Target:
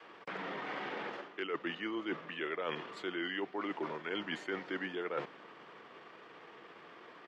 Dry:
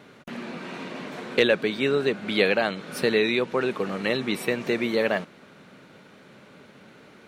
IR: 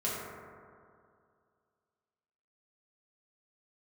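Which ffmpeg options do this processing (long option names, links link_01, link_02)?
-filter_complex "[0:a]adynamicequalizer=threshold=0.0178:dfrequency=260:dqfactor=1.1:tfrequency=260:tqfactor=1.1:attack=5:release=100:ratio=0.375:range=2:mode=boostabove:tftype=bell,asetrate=35002,aresample=44100,atempo=1.25992,highpass=86,acrossover=split=340 5200:gain=0.0794 1 0.0631[link_01][link_02][link_03];[link_01][link_02][link_03]amix=inputs=3:normalize=0,areverse,acompressor=threshold=-34dB:ratio=16,areverse"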